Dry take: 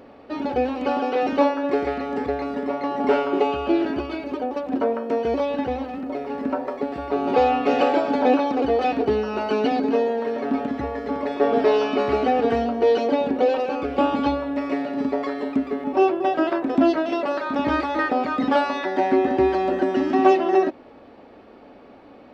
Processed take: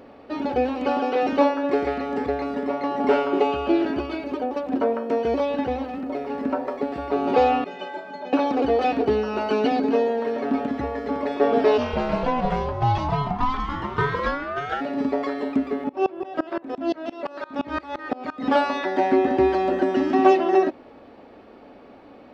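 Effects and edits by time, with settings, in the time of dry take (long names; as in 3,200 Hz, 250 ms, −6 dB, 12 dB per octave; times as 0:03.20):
0:07.64–0:08.33: stiff-string resonator 180 Hz, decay 0.25 s, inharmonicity 0.03
0:11.77–0:14.80: ring modulation 180 Hz → 1,100 Hz
0:15.89–0:18.47: tremolo with a ramp in dB swelling 5.8 Hz, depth 24 dB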